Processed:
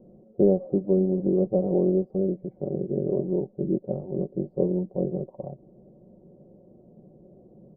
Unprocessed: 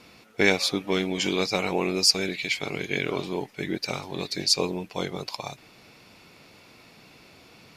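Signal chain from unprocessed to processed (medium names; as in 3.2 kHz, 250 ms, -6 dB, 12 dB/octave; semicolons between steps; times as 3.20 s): elliptic low-pass 590 Hz, stop band 80 dB; comb 5.4 ms, depth 59%; trim +3.5 dB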